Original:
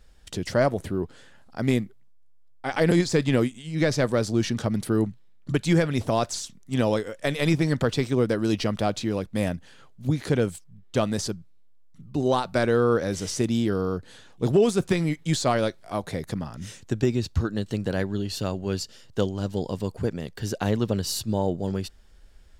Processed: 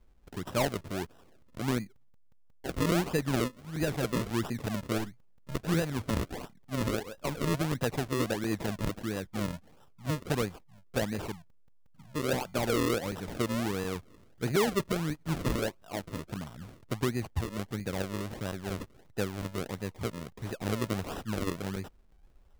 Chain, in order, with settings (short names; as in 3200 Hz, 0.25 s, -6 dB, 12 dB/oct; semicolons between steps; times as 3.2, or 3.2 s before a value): 4.98–5.6 half-wave gain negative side -12 dB; decimation with a swept rate 39×, swing 100% 1.5 Hz; crackling interface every 0.18 s, samples 128, zero, from 0.7; gain -7.5 dB